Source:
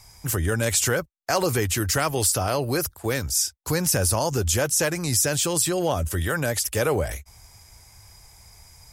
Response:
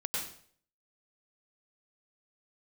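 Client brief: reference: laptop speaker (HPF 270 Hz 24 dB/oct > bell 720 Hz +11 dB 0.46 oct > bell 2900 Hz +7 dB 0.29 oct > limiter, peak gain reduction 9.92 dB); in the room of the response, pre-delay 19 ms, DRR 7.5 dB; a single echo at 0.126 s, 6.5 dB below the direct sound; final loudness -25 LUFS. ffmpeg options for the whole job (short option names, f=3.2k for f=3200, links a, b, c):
-filter_complex "[0:a]aecho=1:1:126:0.473,asplit=2[a][b];[1:a]atrim=start_sample=2205,adelay=19[c];[b][c]afir=irnorm=-1:irlink=0,volume=-11.5dB[d];[a][d]amix=inputs=2:normalize=0,highpass=f=270:w=0.5412,highpass=f=270:w=1.3066,equalizer=f=720:t=o:w=0.46:g=11,equalizer=f=2.9k:t=o:w=0.29:g=7,alimiter=limit=-16.5dB:level=0:latency=1"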